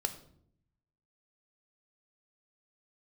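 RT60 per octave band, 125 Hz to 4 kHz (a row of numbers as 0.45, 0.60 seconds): 1.2, 1.0, 0.75, 0.55, 0.45, 0.45 seconds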